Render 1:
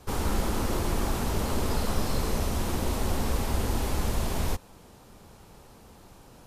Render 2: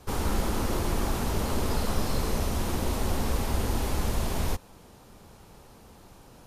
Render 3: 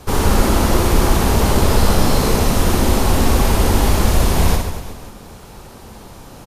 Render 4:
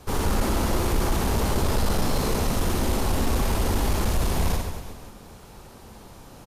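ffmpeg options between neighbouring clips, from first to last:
-af "bandreject=f=7.7k:w=29"
-af "acontrast=84,aecho=1:1:60|138|239.4|371.2|542.6:0.631|0.398|0.251|0.158|0.1,volume=4.5dB"
-af "asoftclip=type=tanh:threshold=-7dB,volume=-7.5dB"

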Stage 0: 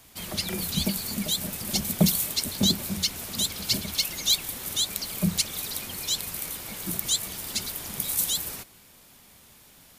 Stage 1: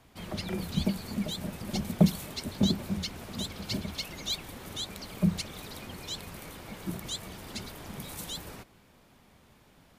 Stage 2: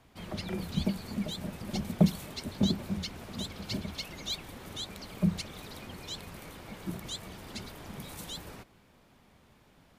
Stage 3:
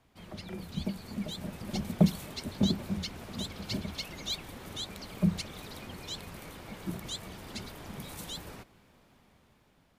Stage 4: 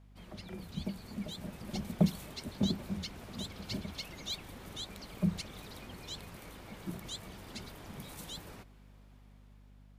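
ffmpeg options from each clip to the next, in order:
-af "lowpass=f=1.3k:p=1"
-af "highshelf=f=6.3k:g=-4.5,volume=-1.5dB"
-af "dynaudnorm=f=340:g=7:m=6.5dB,volume=-6dB"
-af "aeval=exprs='val(0)+0.00251*(sin(2*PI*50*n/s)+sin(2*PI*2*50*n/s)/2+sin(2*PI*3*50*n/s)/3+sin(2*PI*4*50*n/s)/4+sin(2*PI*5*50*n/s)/5)':c=same,volume=-4dB"

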